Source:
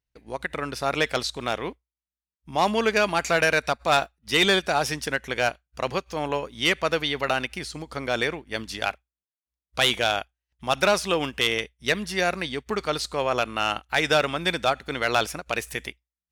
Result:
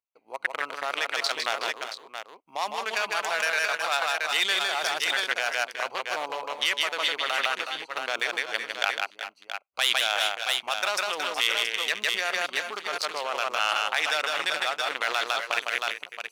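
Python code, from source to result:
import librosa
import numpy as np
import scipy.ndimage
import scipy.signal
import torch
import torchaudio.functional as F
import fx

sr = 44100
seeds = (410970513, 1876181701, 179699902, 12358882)

p1 = fx.wiener(x, sr, points=25)
p2 = fx.echo_multitap(p1, sr, ms=(156, 369, 388, 675), db=(-5.5, -14.5, -16.0, -10.5))
p3 = fx.over_compress(p2, sr, threshold_db=-27.0, ratio=-0.5)
p4 = p2 + (p3 * 10.0 ** (3.0 / 20.0))
p5 = fx.quant_float(p4, sr, bits=8)
p6 = scipy.signal.sosfilt(scipy.signal.butter(2, 1000.0, 'highpass', fs=sr, output='sos'), p5)
p7 = fx.high_shelf(p6, sr, hz=8600.0, db=3.5)
y = p7 * 10.0 ** (-4.0 / 20.0)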